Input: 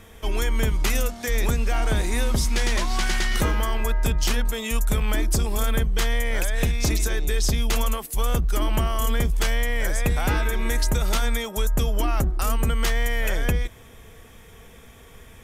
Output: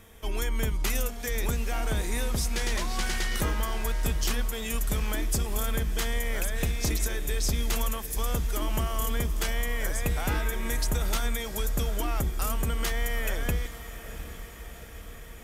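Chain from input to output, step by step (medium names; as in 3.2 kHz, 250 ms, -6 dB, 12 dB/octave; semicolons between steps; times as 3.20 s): treble shelf 9.8 kHz +7 dB; on a send: echo that smears into a reverb 765 ms, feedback 66%, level -13 dB; on the sum: trim -6 dB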